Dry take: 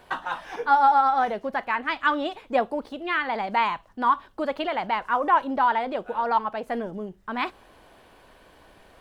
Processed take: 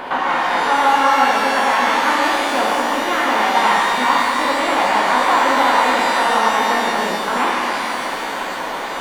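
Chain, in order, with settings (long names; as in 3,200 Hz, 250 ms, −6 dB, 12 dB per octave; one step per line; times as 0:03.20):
compressor on every frequency bin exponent 0.4
hum removal 57.29 Hz, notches 34
reverb with rising layers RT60 2.9 s, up +12 semitones, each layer −8 dB, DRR −4.5 dB
level −3.5 dB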